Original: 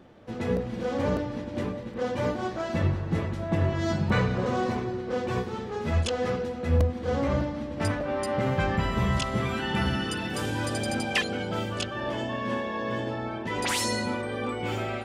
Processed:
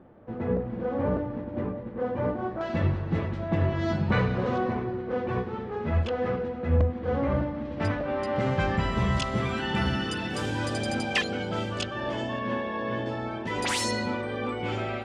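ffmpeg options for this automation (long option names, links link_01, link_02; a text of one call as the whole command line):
ffmpeg -i in.wav -af "asetnsamples=nb_out_samples=441:pad=0,asendcmd='2.61 lowpass f 3700;4.58 lowpass f 2200;7.65 lowpass f 3800;8.36 lowpass f 7600;12.39 lowpass f 3600;13.06 lowpass f 9400;13.91 lowpass f 4900',lowpass=1400" out.wav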